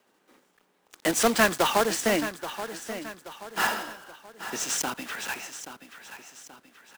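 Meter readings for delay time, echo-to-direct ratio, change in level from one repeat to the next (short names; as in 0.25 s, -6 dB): 0.829 s, -11.0 dB, -7.0 dB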